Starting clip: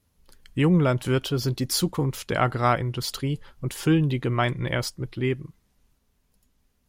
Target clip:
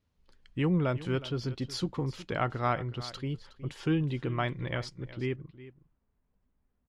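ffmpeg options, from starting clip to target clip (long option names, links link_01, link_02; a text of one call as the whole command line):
ffmpeg -i in.wav -af "asetnsamples=nb_out_samples=441:pad=0,asendcmd='5.36 lowpass f 1600',lowpass=4600,aecho=1:1:366:0.15,volume=-7.5dB" out.wav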